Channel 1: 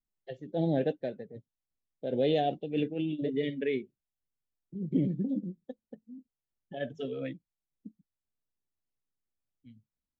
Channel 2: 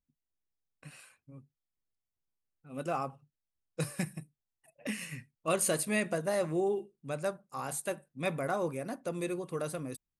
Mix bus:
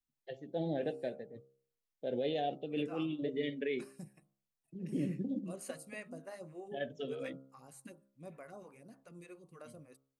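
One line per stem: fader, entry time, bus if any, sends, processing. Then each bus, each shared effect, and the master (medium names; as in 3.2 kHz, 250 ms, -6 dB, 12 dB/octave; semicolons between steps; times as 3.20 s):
-1.0 dB, 0.00 s, no send, bass shelf 260 Hz -7.5 dB; peak limiter -25 dBFS, peak gain reduction 6 dB
-14.0 dB, 0.00 s, no send, treble shelf 5.7 kHz -7 dB; band-stop 3.5 kHz, Q 6.3; phase shifter stages 2, 3.3 Hz, lowest notch 100–2200 Hz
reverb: none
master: de-hum 67.01 Hz, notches 21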